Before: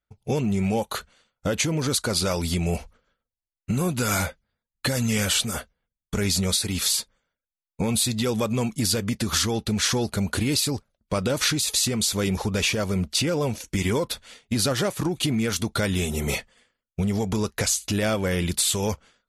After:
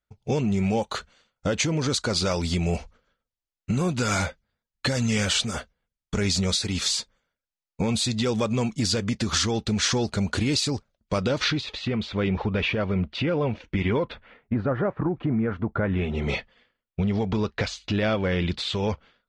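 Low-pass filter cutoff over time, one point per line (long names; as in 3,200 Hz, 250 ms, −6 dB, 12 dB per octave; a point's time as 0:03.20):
low-pass filter 24 dB per octave
0:11.13 7,200 Hz
0:11.75 3,100 Hz
0:14.02 3,100 Hz
0:14.59 1,600 Hz
0:15.81 1,600 Hz
0:16.26 4,100 Hz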